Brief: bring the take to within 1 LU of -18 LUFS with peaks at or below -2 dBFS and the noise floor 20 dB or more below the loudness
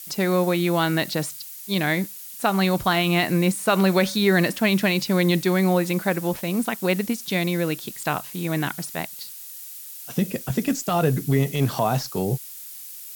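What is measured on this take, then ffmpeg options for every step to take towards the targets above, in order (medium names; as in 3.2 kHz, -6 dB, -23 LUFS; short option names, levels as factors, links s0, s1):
noise floor -39 dBFS; noise floor target -43 dBFS; loudness -23.0 LUFS; peak level -7.5 dBFS; loudness target -18.0 LUFS
-> -af "afftdn=nr=6:nf=-39"
-af "volume=1.78"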